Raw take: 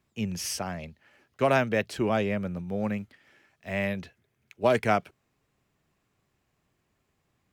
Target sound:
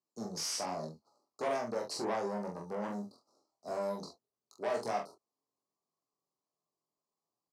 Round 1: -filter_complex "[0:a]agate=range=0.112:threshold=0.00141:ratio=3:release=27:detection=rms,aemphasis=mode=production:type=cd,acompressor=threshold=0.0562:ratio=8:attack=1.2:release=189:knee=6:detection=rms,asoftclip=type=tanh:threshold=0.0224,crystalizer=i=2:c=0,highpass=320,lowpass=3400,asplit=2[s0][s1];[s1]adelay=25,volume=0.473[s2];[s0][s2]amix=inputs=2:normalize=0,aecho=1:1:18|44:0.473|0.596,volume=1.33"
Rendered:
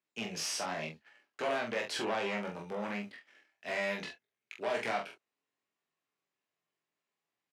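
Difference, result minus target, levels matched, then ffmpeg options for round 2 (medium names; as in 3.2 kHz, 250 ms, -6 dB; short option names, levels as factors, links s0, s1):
2 kHz band +9.0 dB
-filter_complex "[0:a]agate=range=0.112:threshold=0.00141:ratio=3:release=27:detection=rms,aemphasis=mode=production:type=cd,acompressor=threshold=0.0562:ratio=8:attack=1.2:release=189:knee=6:detection=rms,asuperstop=centerf=2300:order=20:qfactor=0.8,asoftclip=type=tanh:threshold=0.0224,crystalizer=i=2:c=0,highpass=320,lowpass=3400,asplit=2[s0][s1];[s1]adelay=25,volume=0.473[s2];[s0][s2]amix=inputs=2:normalize=0,aecho=1:1:18|44:0.473|0.596,volume=1.33"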